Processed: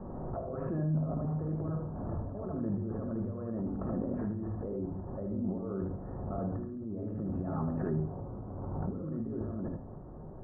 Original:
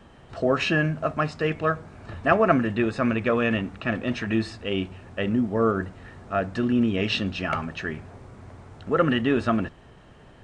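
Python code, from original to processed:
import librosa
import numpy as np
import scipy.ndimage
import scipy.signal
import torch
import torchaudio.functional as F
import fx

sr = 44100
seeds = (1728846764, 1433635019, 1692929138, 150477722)

y = fx.low_shelf(x, sr, hz=440.0, db=-3.5)
y = fx.over_compress(y, sr, threshold_db=-35.0, ratio=-1.0)
y = scipy.signal.sosfilt(scipy.signal.bessel(8, 640.0, 'lowpass', norm='mag', fs=sr, output='sos'), y)
y = y + 10.0 ** (-5.0 / 20.0) * np.pad(y, (int(77 * sr / 1000.0), 0))[:len(y)]
y = fx.room_shoebox(y, sr, seeds[0], volume_m3=620.0, walls='furnished', distance_m=1.0)
y = fx.pre_swell(y, sr, db_per_s=23.0)
y = y * 10.0 ** (-4.0 / 20.0)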